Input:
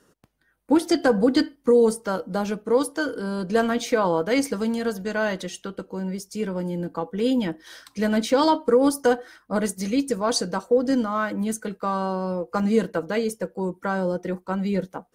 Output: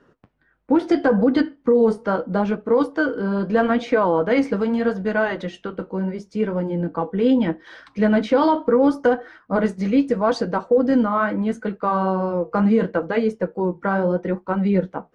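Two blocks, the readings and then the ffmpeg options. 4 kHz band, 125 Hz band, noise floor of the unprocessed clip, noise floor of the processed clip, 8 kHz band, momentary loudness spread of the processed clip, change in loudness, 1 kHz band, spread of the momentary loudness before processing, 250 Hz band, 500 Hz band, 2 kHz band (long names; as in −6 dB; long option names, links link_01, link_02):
−5.5 dB, +4.5 dB, −65 dBFS, −60 dBFS, below −15 dB, 7 LU, +3.5 dB, +3.5 dB, 10 LU, +4.0 dB, +3.0 dB, +3.5 dB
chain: -af "lowpass=2300,flanger=delay=6.9:depth=9.4:regen=-51:speed=0.76:shape=triangular,alimiter=level_in=16.5dB:limit=-1dB:release=50:level=0:latency=1,volume=-7.5dB"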